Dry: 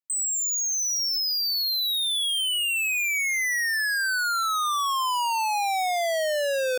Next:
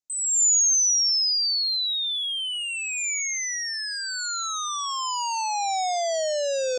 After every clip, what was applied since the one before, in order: EQ curve 760 Hz 0 dB, 1700 Hz -11 dB, 7100 Hz +8 dB, 11000 Hz -29 dB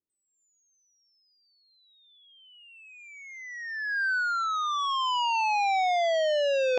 reverse; upward compressor, threshold -26 dBFS; reverse; low-pass sweep 370 Hz -> 2600 Hz, 1.47–4.92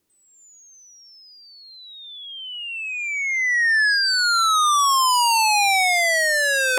in parallel at -1 dB: compressor, threshold -35 dBFS, peak gain reduction 11 dB; on the sum: sine folder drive 12 dB, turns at -15.5 dBFS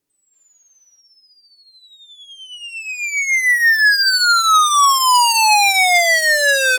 added harmonics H 7 -20 dB, 8 -32 dB, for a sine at -15 dBFS; spectral gain 0.33–1, 540–5400 Hz +9 dB; comb 7.1 ms, depth 48%; gain +4.5 dB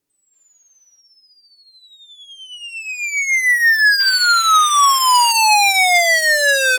painted sound noise, 3.99–5.32, 1000–3600 Hz -37 dBFS

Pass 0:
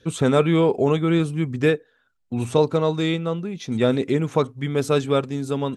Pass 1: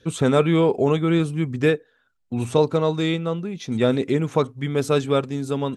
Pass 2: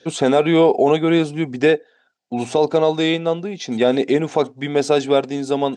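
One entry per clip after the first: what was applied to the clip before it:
nothing audible
speaker cabinet 260–7800 Hz, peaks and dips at 730 Hz +10 dB, 1200 Hz -8 dB, 4900 Hz +4 dB; maximiser +10 dB; gain -4 dB

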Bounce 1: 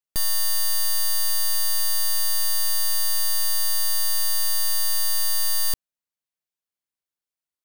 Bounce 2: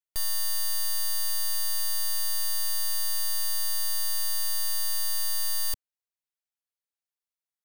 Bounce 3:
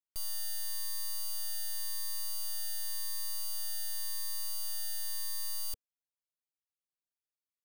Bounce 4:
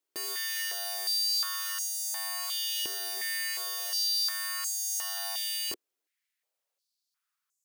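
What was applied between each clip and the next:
bell 200 Hz -13 dB 1.3 oct; gain -5.5 dB
cascading phaser rising 0.91 Hz; gain -8.5 dB
one-sided fold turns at -40.5 dBFS; short-mantissa float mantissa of 2-bit; stepped high-pass 2.8 Hz 360–6900 Hz; gain +8.5 dB

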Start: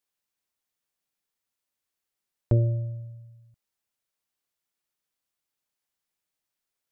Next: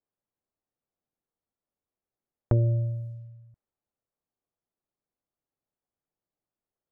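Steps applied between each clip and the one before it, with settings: compressor 3:1, threshold -24 dBFS, peak gain reduction 5.5 dB; low-pass opened by the level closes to 760 Hz, open at -33 dBFS; notch 940 Hz, Q 26; gain +3.5 dB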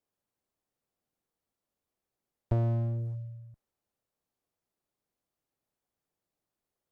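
in parallel at +2 dB: compressor, threshold -33 dBFS, peak gain reduction 13.5 dB; on the sum: one-sided clip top -29.5 dBFS; gain -3.5 dB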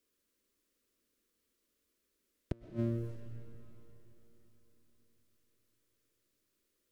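fixed phaser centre 320 Hz, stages 4; flipped gate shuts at -29 dBFS, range -33 dB; reverb RT60 4.1 s, pre-delay 85 ms, DRR 7 dB; gain +9 dB

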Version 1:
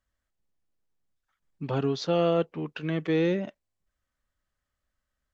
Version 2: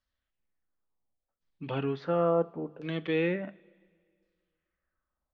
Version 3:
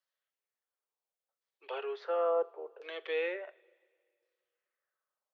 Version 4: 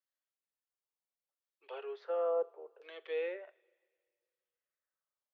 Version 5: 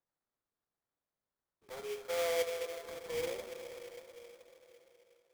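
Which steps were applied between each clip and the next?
LFO low-pass saw down 0.71 Hz 480–5000 Hz; notches 50/100/150/200 Hz; two-slope reverb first 0.29 s, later 2.1 s, from -20 dB, DRR 13.5 dB; gain -4.5 dB
steep high-pass 390 Hz 72 dB/oct; gain -3 dB
dynamic EQ 510 Hz, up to +6 dB, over -41 dBFS, Q 1.3; gain -8 dB
plate-style reverb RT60 4.3 s, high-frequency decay 0.7×, DRR 3.5 dB; sample-rate reducer 2800 Hz, jitter 20%; gain -2 dB

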